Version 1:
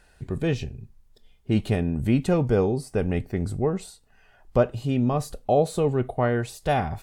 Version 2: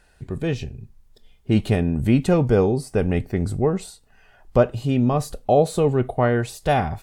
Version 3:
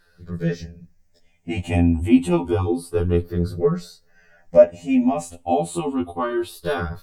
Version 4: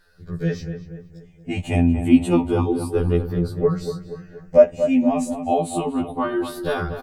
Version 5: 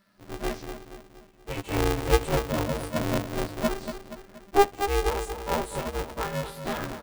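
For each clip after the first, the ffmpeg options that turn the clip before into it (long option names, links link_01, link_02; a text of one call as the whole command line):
ffmpeg -i in.wav -af "dynaudnorm=framelen=530:gausssize=3:maxgain=4dB" out.wav
ffmpeg -i in.wav -af "afftfilt=real='re*pow(10,13/40*sin(2*PI*(0.6*log(max(b,1)*sr/1024/100)/log(2)-(0.29)*(pts-256)/sr)))':imag='im*pow(10,13/40*sin(2*PI*(0.6*log(max(b,1)*sr/1024/100)/log(2)-(0.29)*(pts-256)/sr)))':win_size=1024:overlap=0.75,afftfilt=real='re*2*eq(mod(b,4),0)':imag='im*2*eq(mod(b,4),0)':win_size=2048:overlap=0.75,volume=-1dB" out.wav
ffmpeg -i in.wav -filter_complex "[0:a]asplit=2[link_01][link_02];[link_02]adelay=237,lowpass=frequency=1800:poles=1,volume=-9dB,asplit=2[link_03][link_04];[link_04]adelay=237,lowpass=frequency=1800:poles=1,volume=0.5,asplit=2[link_05][link_06];[link_06]adelay=237,lowpass=frequency=1800:poles=1,volume=0.5,asplit=2[link_07][link_08];[link_08]adelay=237,lowpass=frequency=1800:poles=1,volume=0.5,asplit=2[link_09][link_10];[link_10]adelay=237,lowpass=frequency=1800:poles=1,volume=0.5,asplit=2[link_11][link_12];[link_12]adelay=237,lowpass=frequency=1800:poles=1,volume=0.5[link_13];[link_01][link_03][link_05][link_07][link_09][link_11][link_13]amix=inputs=7:normalize=0" out.wav
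ffmpeg -i in.wav -af "aeval=exprs='val(0)*sgn(sin(2*PI*200*n/s))':channel_layout=same,volume=-7.5dB" out.wav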